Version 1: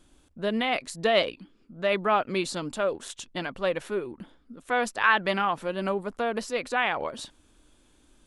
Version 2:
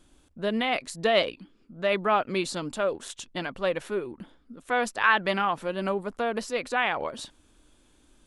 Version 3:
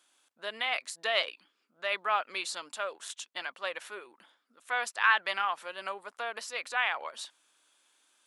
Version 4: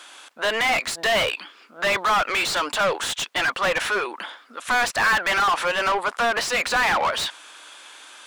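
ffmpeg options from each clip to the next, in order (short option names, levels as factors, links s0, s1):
-af anull
-af "highpass=990,volume=0.841"
-filter_complex "[0:a]asplit=2[s0][s1];[s1]highpass=f=720:p=1,volume=63.1,asoftclip=type=tanh:threshold=0.251[s2];[s0][s2]amix=inputs=2:normalize=0,lowpass=f=2600:p=1,volume=0.501"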